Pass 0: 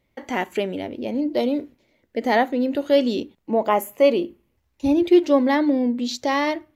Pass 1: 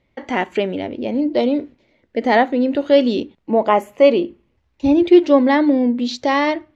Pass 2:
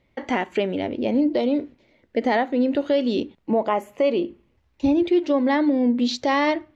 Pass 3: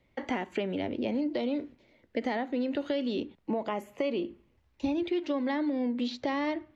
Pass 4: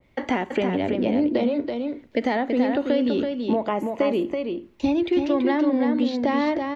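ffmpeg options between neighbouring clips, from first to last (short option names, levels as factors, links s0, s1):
-af "lowpass=4600,volume=1.68"
-af "alimiter=limit=0.251:level=0:latency=1:release=331"
-filter_complex "[0:a]acrossover=split=330|800|1600|4200[s0][s1][s2][s3][s4];[s0]acompressor=threshold=0.0355:ratio=4[s5];[s1]acompressor=threshold=0.0224:ratio=4[s6];[s2]acompressor=threshold=0.0141:ratio=4[s7];[s3]acompressor=threshold=0.0126:ratio=4[s8];[s4]acompressor=threshold=0.002:ratio=4[s9];[s5][s6][s7][s8][s9]amix=inputs=5:normalize=0,volume=0.668"
-af "aecho=1:1:330:0.562,adynamicequalizer=threshold=0.00355:dfrequency=2100:dqfactor=0.7:tfrequency=2100:tqfactor=0.7:attack=5:release=100:ratio=0.375:range=3:mode=cutabove:tftype=highshelf,volume=2.51"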